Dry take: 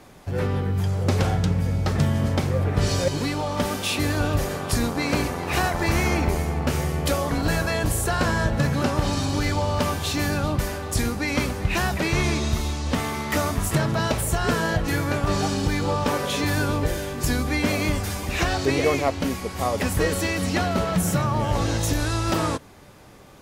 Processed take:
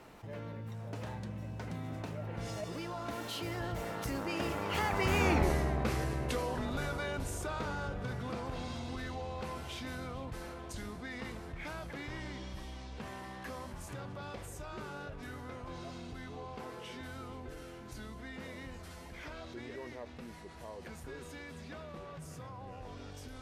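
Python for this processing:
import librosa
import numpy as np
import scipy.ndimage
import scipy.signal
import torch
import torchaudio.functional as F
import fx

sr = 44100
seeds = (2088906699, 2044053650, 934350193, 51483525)

y = fx.doppler_pass(x, sr, speed_mps=49, closest_m=9.8, pass_at_s=5.37)
y = fx.bass_treble(y, sr, bass_db=-3, treble_db=-6)
y = fx.env_flatten(y, sr, amount_pct=50)
y = F.gain(torch.from_numpy(y), -5.0).numpy()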